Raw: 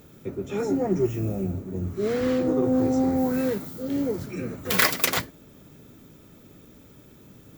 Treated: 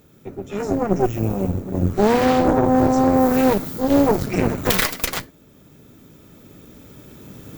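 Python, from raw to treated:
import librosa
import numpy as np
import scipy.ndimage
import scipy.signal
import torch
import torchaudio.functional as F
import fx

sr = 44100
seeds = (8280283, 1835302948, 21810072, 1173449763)

y = fx.recorder_agc(x, sr, target_db=-6.5, rise_db_per_s=5.3, max_gain_db=30)
y = fx.cheby_harmonics(y, sr, harmonics=(8,), levels_db=(-14,), full_scale_db=1.0)
y = y * 10.0 ** (-2.5 / 20.0)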